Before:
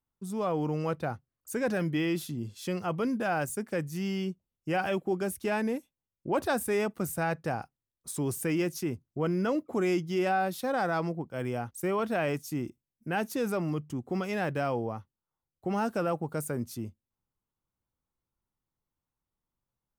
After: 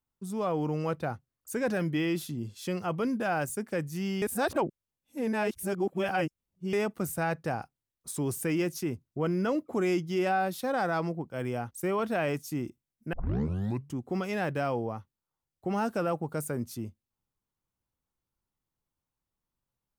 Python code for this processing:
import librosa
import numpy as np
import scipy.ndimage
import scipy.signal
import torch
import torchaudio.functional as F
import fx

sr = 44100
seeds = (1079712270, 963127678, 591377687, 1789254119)

y = fx.edit(x, sr, fx.reverse_span(start_s=4.22, length_s=2.51),
    fx.tape_start(start_s=13.13, length_s=0.77), tone=tone)